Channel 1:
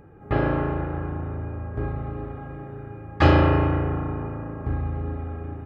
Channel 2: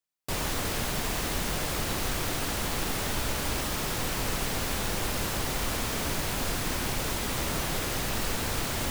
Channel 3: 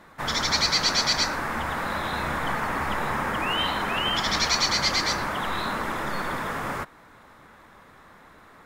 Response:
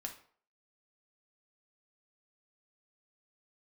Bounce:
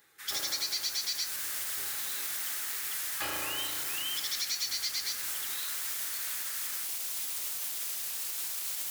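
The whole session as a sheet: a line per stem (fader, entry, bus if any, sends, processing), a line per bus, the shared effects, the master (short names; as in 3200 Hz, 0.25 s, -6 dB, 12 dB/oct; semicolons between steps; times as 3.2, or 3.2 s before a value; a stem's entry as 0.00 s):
+1.5 dB, 0.00 s, no send, dry
+0.5 dB, 0.00 s, no send, limiter -21.5 dBFS, peak gain reduction 5 dB; vibrato 0.58 Hz 36 cents
0.0 dB, 0.00 s, no send, HPF 1400 Hz 24 dB/oct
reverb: off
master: differentiator; modulation noise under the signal 23 dB; compressor 4:1, threshold -30 dBFS, peak gain reduction 7 dB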